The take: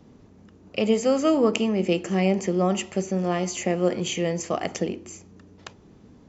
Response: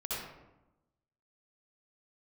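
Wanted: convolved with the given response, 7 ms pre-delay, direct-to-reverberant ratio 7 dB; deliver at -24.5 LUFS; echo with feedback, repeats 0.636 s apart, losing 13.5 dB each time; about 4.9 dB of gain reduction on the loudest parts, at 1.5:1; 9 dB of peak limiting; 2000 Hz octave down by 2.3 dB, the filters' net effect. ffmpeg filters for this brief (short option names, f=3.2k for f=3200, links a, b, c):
-filter_complex "[0:a]equalizer=f=2k:t=o:g=-3,acompressor=threshold=-30dB:ratio=1.5,alimiter=limit=-22dB:level=0:latency=1,aecho=1:1:636|1272:0.211|0.0444,asplit=2[a][b];[1:a]atrim=start_sample=2205,adelay=7[c];[b][c]afir=irnorm=-1:irlink=0,volume=-11dB[d];[a][d]amix=inputs=2:normalize=0,volume=7dB"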